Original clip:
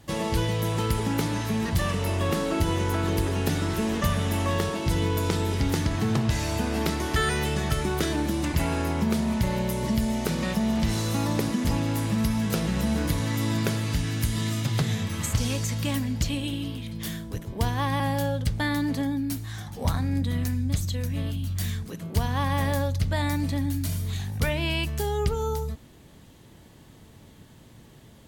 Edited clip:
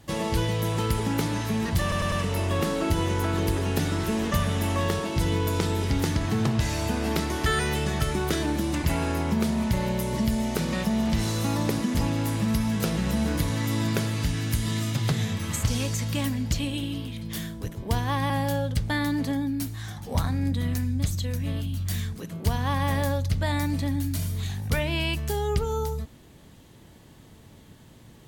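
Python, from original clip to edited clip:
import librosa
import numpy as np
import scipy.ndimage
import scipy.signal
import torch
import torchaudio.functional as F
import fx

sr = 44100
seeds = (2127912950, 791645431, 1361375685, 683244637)

y = fx.edit(x, sr, fx.stutter(start_s=1.82, slice_s=0.1, count=4), tone=tone)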